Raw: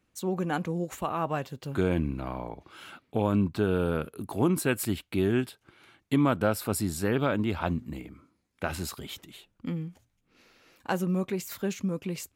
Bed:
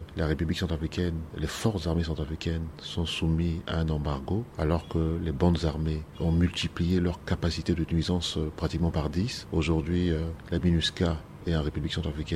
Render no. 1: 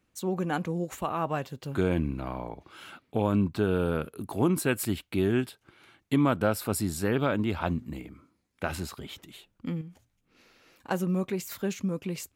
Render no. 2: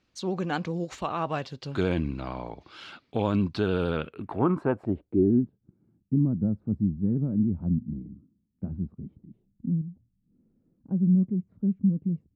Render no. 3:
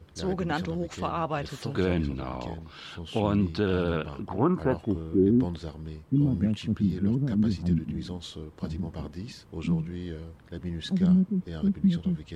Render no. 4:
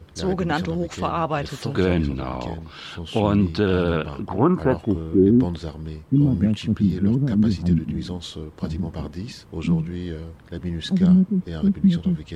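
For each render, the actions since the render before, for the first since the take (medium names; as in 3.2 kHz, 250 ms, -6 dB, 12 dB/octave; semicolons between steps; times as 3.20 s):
8.80–9.22 s: treble shelf 4.8 kHz -8 dB; 9.81–10.91 s: compression 5:1, threshold -40 dBFS
vibrato 13 Hz 42 cents; low-pass sweep 4.8 kHz -> 200 Hz, 3.83–5.47 s
add bed -10 dB
trim +6 dB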